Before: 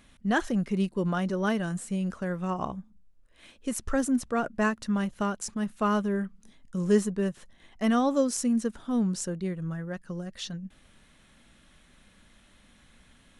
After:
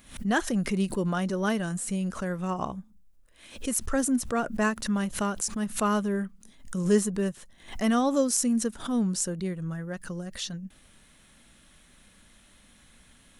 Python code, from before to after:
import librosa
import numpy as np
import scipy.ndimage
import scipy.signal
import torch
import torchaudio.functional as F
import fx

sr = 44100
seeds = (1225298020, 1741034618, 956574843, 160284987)

y = fx.high_shelf(x, sr, hz=7300.0, db=11.5)
y = fx.pre_swell(y, sr, db_per_s=130.0)